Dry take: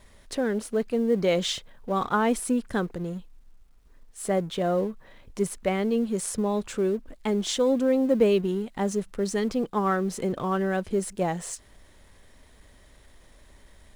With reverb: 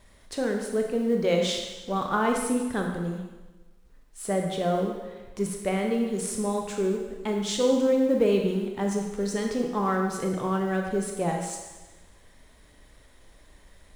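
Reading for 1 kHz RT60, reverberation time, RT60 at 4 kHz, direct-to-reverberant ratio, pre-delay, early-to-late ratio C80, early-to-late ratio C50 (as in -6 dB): 1.2 s, 1.2 s, 1.2 s, 1.5 dB, 21 ms, 5.0 dB, 3.5 dB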